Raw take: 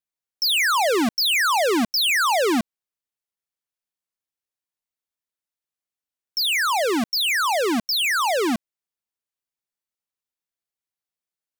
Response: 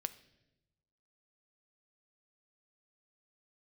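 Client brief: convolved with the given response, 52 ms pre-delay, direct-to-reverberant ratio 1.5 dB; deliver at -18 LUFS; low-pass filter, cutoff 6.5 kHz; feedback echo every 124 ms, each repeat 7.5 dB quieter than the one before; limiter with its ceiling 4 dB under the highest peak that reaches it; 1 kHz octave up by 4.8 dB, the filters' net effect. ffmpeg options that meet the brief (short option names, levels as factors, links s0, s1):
-filter_complex "[0:a]lowpass=6500,equalizer=f=1000:t=o:g=6,alimiter=limit=0.158:level=0:latency=1,aecho=1:1:124|248|372|496|620:0.422|0.177|0.0744|0.0312|0.0131,asplit=2[s0][s1];[1:a]atrim=start_sample=2205,adelay=52[s2];[s1][s2]afir=irnorm=-1:irlink=0,volume=0.944[s3];[s0][s3]amix=inputs=2:normalize=0,volume=0.841"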